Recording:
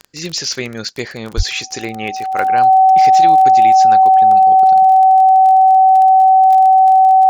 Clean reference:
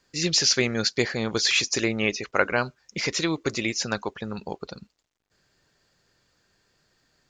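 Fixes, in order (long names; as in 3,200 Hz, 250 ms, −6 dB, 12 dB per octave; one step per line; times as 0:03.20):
click removal
notch filter 760 Hz, Q 30
0:01.36–0:01.48: high-pass filter 140 Hz 24 dB per octave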